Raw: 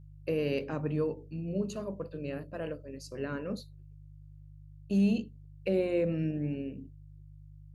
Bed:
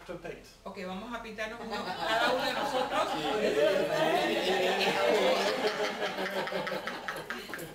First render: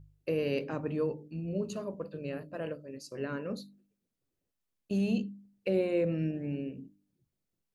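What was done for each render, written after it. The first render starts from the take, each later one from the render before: de-hum 50 Hz, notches 6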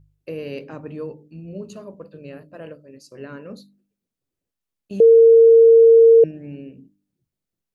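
5.00–6.24 s: bleep 457 Hz -6.5 dBFS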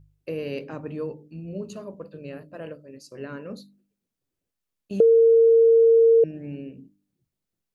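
compression, threshold -14 dBFS, peak gain reduction 5.5 dB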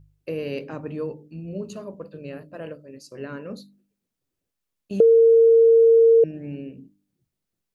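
trim +1.5 dB

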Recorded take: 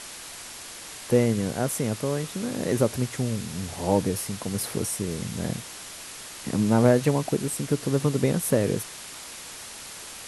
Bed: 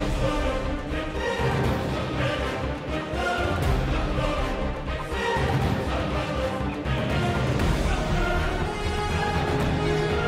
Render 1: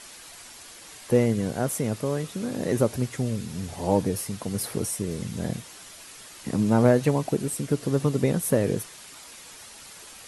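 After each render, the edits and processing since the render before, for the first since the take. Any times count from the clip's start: noise reduction 7 dB, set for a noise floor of -41 dBFS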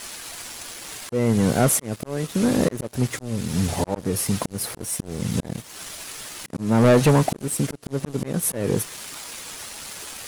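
slow attack 414 ms; waveshaping leveller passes 3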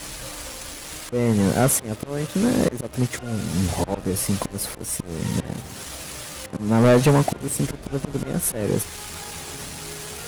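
add bed -15.5 dB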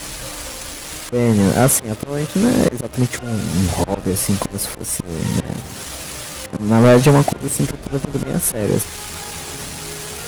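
trim +5 dB

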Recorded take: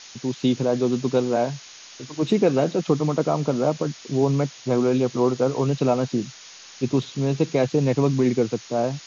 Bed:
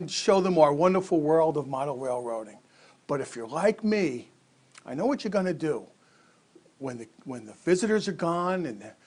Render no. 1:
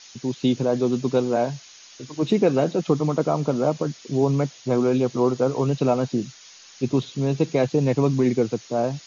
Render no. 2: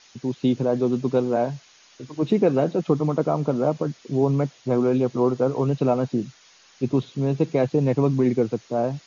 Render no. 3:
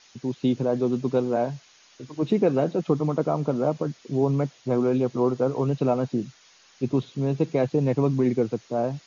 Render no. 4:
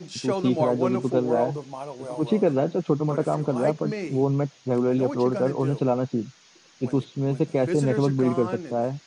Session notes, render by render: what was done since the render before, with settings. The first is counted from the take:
noise reduction 6 dB, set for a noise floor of -44 dBFS
treble shelf 3.2 kHz -11 dB
trim -2 dB
add bed -5.5 dB

